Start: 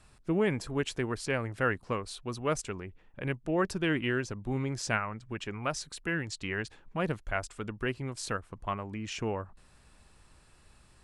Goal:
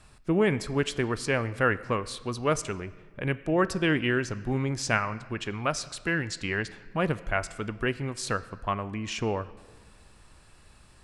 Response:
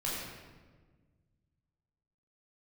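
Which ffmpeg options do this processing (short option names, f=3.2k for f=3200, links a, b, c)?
-filter_complex "[0:a]asplit=2[a][b];[1:a]atrim=start_sample=2205,lowpass=6.7k,lowshelf=f=450:g=-9.5[c];[b][c]afir=irnorm=-1:irlink=0,volume=-17dB[d];[a][d]amix=inputs=2:normalize=0,volume=4dB"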